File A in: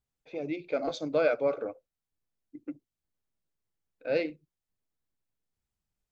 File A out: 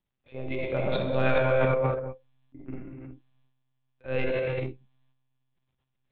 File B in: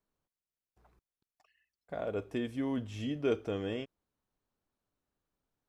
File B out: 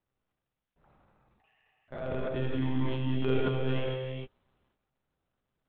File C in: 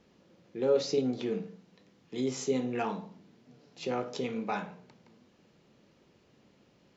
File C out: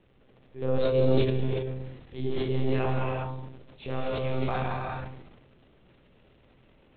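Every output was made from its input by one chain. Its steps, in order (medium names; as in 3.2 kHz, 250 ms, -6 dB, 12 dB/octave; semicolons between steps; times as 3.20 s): monotone LPC vocoder at 8 kHz 130 Hz; gated-style reverb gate 430 ms flat, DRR -1.5 dB; transient shaper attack -3 dB, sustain +11 dB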